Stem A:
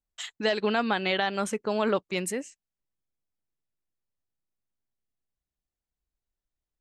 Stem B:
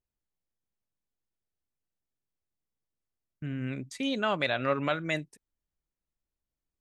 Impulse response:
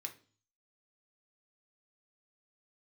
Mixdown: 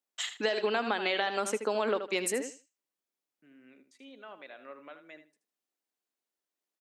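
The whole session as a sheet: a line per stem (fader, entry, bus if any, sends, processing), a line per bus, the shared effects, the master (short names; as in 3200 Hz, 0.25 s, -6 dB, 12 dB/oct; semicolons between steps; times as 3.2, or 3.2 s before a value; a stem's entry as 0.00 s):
+2.5 dB, 0.00 s, no send, echo send -11 dB, dry
-19.0 dB, 0.00 s, no send, echo send -11 dB, treble ducked by the level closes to 3000 Hz, closed at -26 dBFS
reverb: off
echo: feedback echo 78 ms, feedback 17%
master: HPF 260 Hz 24 dB/oct; compressor 5:1, threshold -26 dBFS, peak gain reduction 7.5 dB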